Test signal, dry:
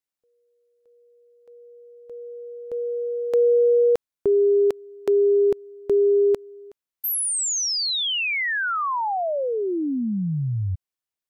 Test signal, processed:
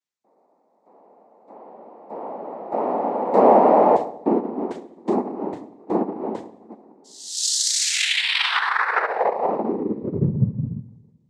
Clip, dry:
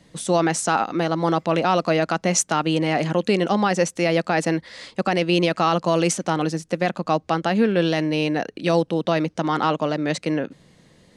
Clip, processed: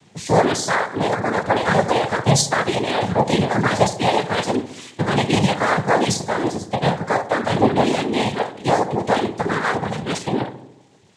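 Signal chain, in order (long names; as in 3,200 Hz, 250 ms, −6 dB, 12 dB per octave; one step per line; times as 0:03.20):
coupled-rooms reverb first 0.63 s, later 2.2 s, DRR −1 dB
reverb reduction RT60 1.1 s
cochlear-implant simulation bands 6
on a send: feedback echo with a low-pass in the loop 71 ms, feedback 62%, low-pass 1,200 Hz, level −13.5 dB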